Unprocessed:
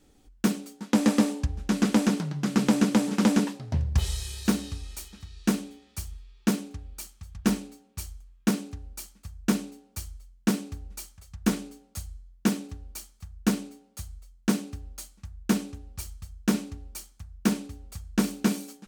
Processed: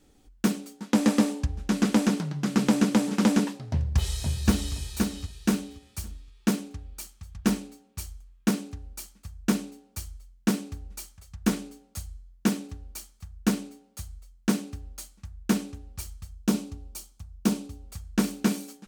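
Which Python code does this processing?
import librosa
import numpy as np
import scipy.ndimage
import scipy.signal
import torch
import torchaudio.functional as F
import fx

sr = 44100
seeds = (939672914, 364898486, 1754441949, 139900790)

y = fx.echo_throw(x, sr, start_s=3.7, length_s=1.04, ms=520, feedback_pct=25, wet_db=-2.5)
y = fx.peak_eq(y, sr, hz=1800.0, db=-7.0, octaves=0.81, at=(16.35, 17.88))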